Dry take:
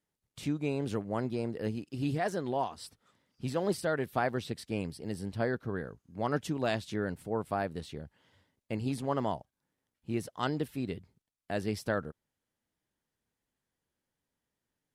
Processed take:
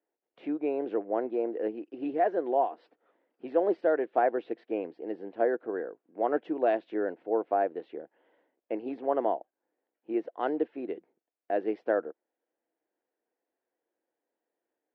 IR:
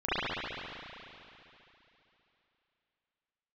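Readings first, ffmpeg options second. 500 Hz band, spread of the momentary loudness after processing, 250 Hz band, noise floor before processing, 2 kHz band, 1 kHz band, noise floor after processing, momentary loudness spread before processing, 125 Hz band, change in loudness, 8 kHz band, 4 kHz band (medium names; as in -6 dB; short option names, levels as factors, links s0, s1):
+6.5 dB, 11 LU, +0.5 dB, under -85 dBFS, -2.0 dB, +5.0 dB, under -85 dBFS, 9 LU, under -20 dB, +4.0 dB, under -30 dB, under -10 dB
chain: -af "highpass=f=300:w=0.5412,highpass=f=300:w=1.3066,equalizer=f=330:t=q:w=4:g=8,equalizer=f=490:t=q:w=4:g=7,equalizer=f=700:t=q:w=4:g=8,equalizer=f=1200:t=q:w=4:g=-5,equalizer=f=2100:t=q:w=4:g=-3,lowpass=f=2300:w=0.5412,lowpass=f=2300:w=1.3066"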